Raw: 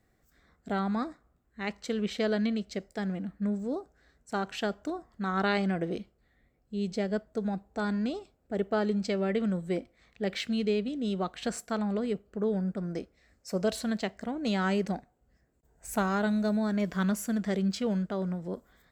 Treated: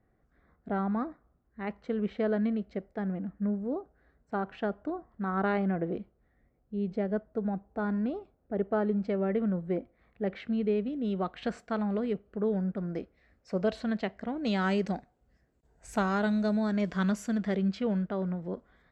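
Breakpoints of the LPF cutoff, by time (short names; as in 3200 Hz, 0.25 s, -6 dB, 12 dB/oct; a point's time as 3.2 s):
10.56 s 1500 Hz
11.39 s 2800 Hz
14.2 s 2800 Hz
14.64 s 5800 Hz
17.22 s 5800 Hz
17.66 s 2800 Hz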